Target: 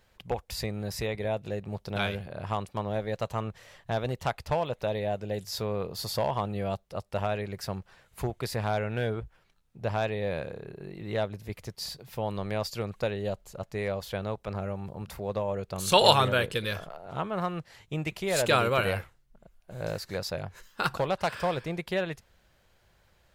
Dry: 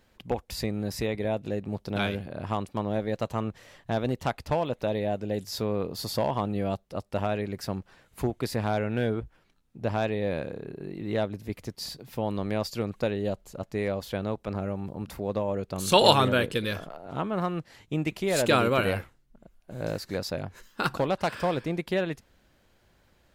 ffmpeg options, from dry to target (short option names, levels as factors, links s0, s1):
-af "equalizer=f=270:t=o:w=0.8:g=-10"